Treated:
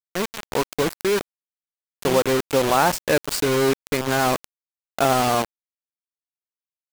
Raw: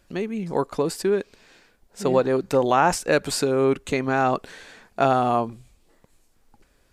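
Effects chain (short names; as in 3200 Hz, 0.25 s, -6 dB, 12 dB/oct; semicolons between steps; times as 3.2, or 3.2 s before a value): bit-crush 4-bit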